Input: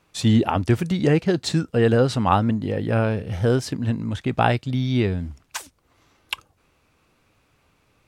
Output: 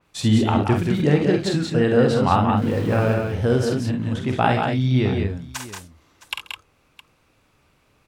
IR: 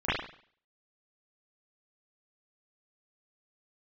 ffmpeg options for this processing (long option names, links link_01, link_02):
-filter_complex "[0:a]asettb=1/sr,asplit=3[link_01][link_02][link_03];[link_01]atrim=end=2.574[link_04];[link_02]atrim=start=2.57:end=3.14,asetpts=PTS-STARTPTS,afade=type=in:duration=0.004:curve=qsin,afade=type=out:start_time=0.566:duration=0.004:curve=qsin,aeval=exprs='val(0)+0.5*0.0335*sgn(val(0))':channel_layout=same[link_05];[link_03]atrim=start=3.136[link_06];[link_04][link_05]acrossfade=duration=0.004:curve1=hsin:curve2=qsin[link_07];[link_07][link_06]acrossfade=duration=0.004:curve1=qsin:curve2=hsin,asplit=2[link_08][link_09];[link_09]aecho=0:1:47|68|134|179|209|664:0.501|0.266|0.1|0.562|0.422|0.133[link_10];[link_08][link_10]amix=inputs=2:normalize=0,adynamicequalizer=threshold=0.0112:dfrequency=3800:dqfactor=0.7:tfrequency=3800:tqfactor=0.7:attack=5:release=100:ratio=0.375:range=2:mode=cutabove:tftype=highshelf,volume=-1dB"